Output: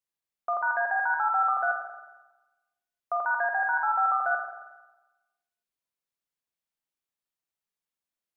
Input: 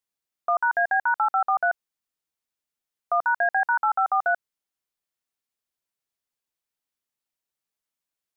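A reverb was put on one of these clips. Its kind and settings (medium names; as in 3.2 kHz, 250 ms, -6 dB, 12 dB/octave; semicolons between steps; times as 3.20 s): spring tank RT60 1.1 s, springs 45/51 ms, chirp 20 ms, DRR 2 dB; trim -5.5 dB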